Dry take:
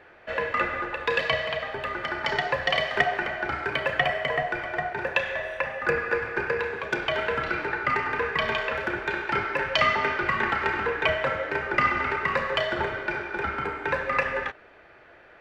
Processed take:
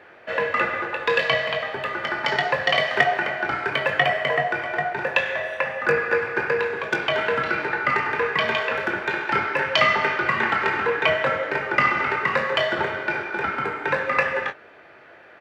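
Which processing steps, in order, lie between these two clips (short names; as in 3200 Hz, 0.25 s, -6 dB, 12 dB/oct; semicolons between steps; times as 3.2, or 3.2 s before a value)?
HPF 120 Hz 12 dB/oct; doubler 21 ms -8 dB; gain +3.5 dB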